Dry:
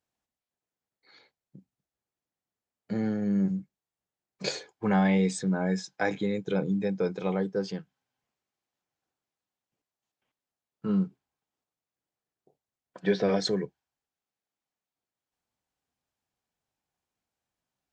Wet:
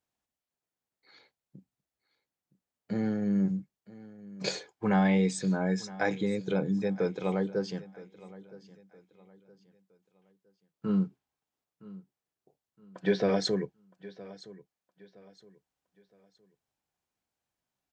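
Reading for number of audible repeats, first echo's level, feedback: 2, -19.0 dB, 34%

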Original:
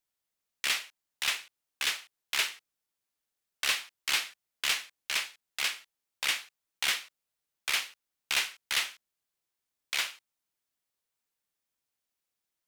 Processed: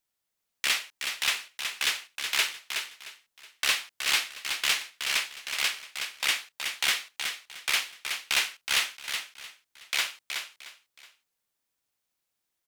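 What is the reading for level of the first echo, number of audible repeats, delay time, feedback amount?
-6.5 dB, 3, 371 ms, no regular repeats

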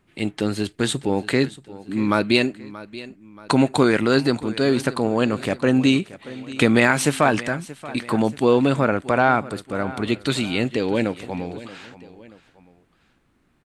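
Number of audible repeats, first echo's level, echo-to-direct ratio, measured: 2, -17.5 dB, -16.5 dB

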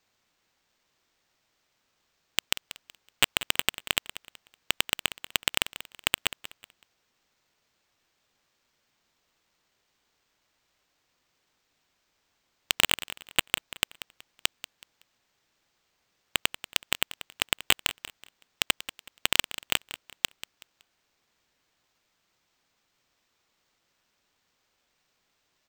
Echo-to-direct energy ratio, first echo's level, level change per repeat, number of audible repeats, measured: -14.0 dB, -14.5 dB, -10.5 dB, 2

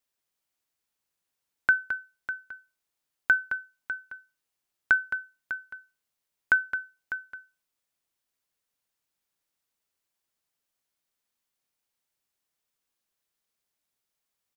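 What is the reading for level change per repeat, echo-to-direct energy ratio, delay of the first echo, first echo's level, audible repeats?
no regular repeats, -9.5 dB, 216 ms, -9.5 dB, 1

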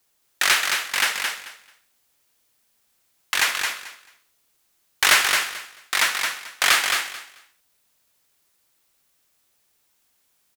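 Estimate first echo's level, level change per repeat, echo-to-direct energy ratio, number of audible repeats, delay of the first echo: -5.0 dB, -14.5 dB, -5.0 dB, 3, 219 ms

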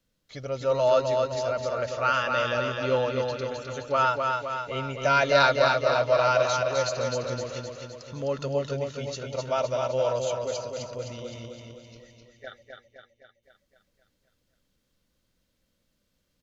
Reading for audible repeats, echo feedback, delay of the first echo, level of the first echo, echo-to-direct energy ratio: 7, 57%, 258 ms, -4.0 dB, -2.5 dB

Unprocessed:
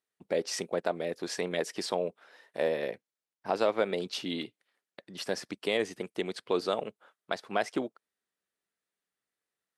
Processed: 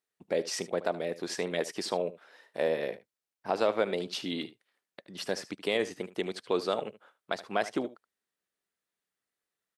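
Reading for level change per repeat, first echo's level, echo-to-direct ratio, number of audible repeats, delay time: no regular repeats, -16.0 dB, -16.0 dB, 1, 75 ms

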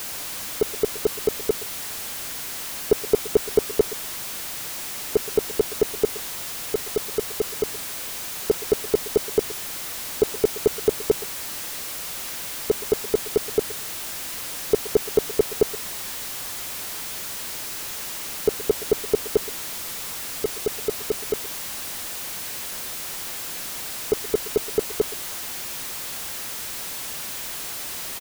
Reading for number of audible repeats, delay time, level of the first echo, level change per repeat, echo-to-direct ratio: 1, 122 ms, -18.0 dB, no regular repeats, -18.0 dB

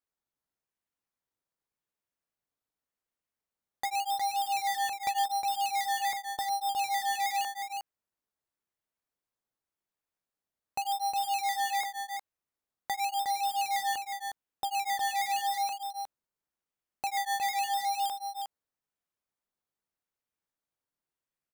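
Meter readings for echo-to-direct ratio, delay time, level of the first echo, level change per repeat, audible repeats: -6.0 dB, 361 ms, -6.0 dB, no regular repeats, 1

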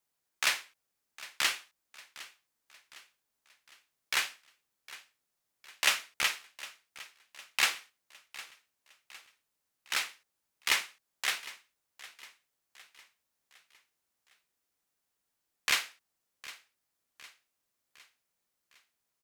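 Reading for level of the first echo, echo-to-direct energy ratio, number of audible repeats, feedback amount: -18.0 dB, -17.0 dB, 3, 49%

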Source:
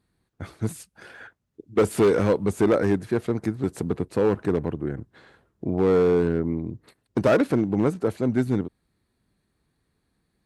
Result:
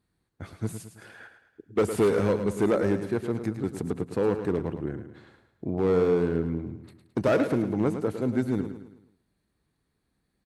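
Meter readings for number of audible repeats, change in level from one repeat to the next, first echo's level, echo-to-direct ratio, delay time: 4, -7.0 dB, -9.5 dB, -8.5 dB, 108 ms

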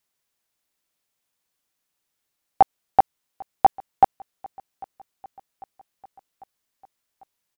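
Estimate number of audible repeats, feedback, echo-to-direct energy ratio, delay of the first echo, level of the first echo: 3, 60%, -22.0 dB, 797 ms, -24.0 dB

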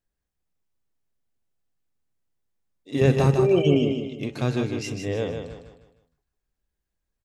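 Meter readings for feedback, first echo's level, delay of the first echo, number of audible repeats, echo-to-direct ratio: 38%, -6.0 dB, 154 ms, 4, -5.5 dB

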